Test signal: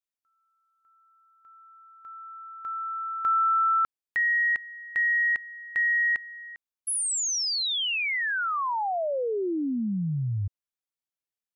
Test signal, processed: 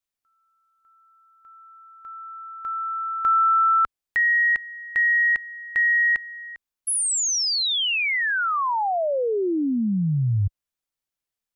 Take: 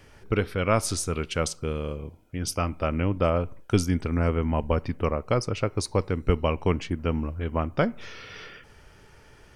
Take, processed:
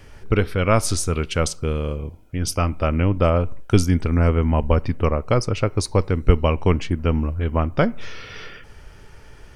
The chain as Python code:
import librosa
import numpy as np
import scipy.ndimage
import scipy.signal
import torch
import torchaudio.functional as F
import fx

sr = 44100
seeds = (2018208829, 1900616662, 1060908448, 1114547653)

y = fx.low_shelf(x, sr, hz=63.0, db=10.0)
y = F.gain(torch.from_numpy(y), 4.5).numpy()